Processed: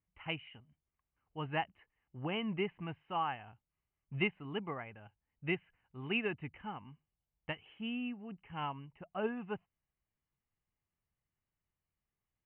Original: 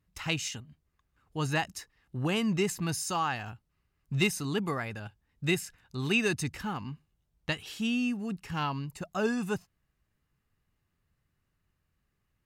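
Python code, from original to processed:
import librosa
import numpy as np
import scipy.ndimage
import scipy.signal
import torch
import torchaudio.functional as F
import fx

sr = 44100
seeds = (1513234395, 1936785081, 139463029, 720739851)

y = scipy.signal.sosfilt(scipy.signal.cheby1(6, 6, 3100.0, 'lowpass', fs=sr, output='sos'), x)
y = fx.upward_expand(y, sr, threshold_db=-43.0, expansion=1.5)
y = y * librosa.db_to_amplitude(-1.0)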